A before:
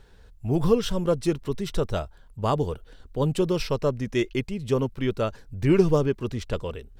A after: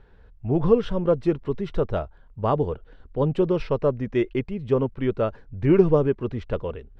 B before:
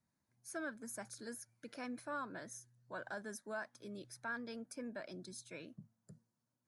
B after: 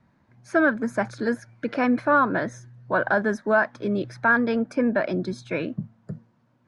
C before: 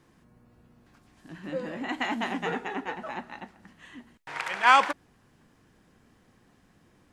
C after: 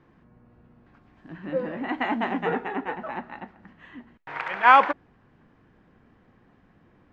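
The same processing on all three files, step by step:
dynamic bell 500 Hz, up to +3 dB, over -33 dBFS, Q 0.79; low-pass 2.2 kHz 12 dB/octave; normalise loudness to -24 LUFS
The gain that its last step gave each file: 0.0 dB, +23.5 dB, +3.0 dB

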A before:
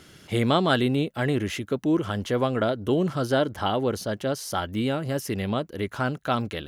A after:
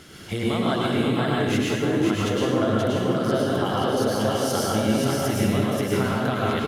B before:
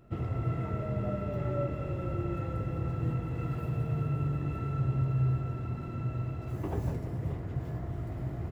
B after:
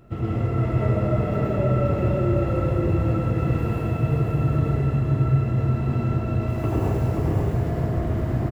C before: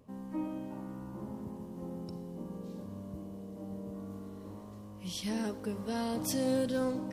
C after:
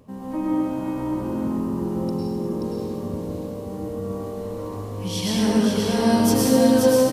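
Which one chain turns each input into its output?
compression, threshold -30 dBFS; on a send: delay 530 ms -3.5 dB; on the sum: plate-style reverb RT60 1.2 s, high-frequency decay 0.9×, pre-delay 90 ms, DRR -4 dB; normalise loudness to -23 LUFS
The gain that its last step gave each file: +3.5 dB, +6.5 dB, +9.0 dB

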